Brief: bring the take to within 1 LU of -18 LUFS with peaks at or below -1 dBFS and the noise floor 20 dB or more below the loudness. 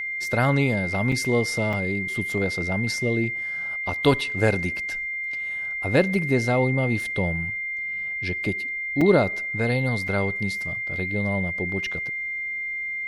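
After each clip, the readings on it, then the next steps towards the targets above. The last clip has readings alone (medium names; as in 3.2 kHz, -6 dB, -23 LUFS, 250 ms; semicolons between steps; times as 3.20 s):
dropouts 4; longest dropout 3.8 ms; steady tone 2.1 kHz; tone level -27 dBFS; loudness -24.0 LUFS; peak level -6.5 dBFS; loudness target -18.0 LUFS
-> interpolate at 1.12/1.73/9.01/10.08 s, 3.8 ms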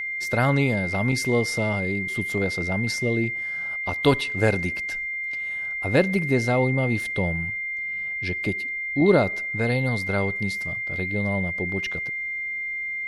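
dropouts 0; steady tone 2.1 kHz; tone level -27 dBFS
-> band-stop 2.1 kHz, Q 30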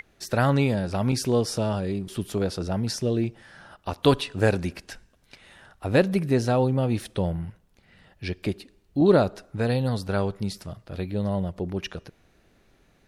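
steady tone not found; loudness -25.5 LUFS; peak level -7.0 dBFS; loudness target -18.0 LUFS
-> trim +7.5 dB; peak limiter -1 dBFS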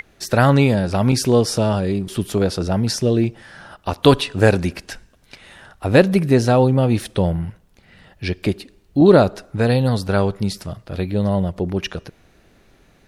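loudness -18.0 LUFS; peak level -1.0 dBFS; noise floor -55 dBFS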